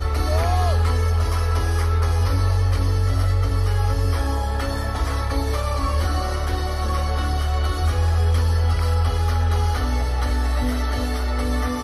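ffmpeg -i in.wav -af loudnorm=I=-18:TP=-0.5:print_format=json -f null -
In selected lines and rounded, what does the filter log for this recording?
"input_i" : "-22.1",
"input_tp" : "-9.8",
"input_lra" : "2.2",
"input_thresh" : "-32.1",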